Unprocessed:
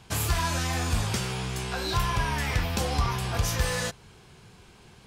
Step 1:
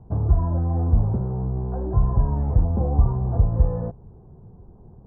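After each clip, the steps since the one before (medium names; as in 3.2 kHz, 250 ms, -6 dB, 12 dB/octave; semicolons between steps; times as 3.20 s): inverse Chebyshev low-pass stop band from 2.9 kHz, stop band 60 dB; tilt EQ -2.5 dB/octave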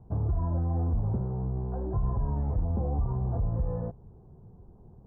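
peak limiter -15 dBFS, peak gain reduction 8 dB; trim -5.5 dB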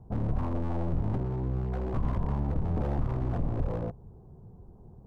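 one-sided wavefolder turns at -30.5 dBFS; trim +1.5 dB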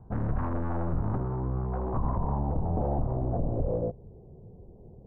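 low-pass sweep 1.6 kHz -> 550 Hz, 0.45–3.83 s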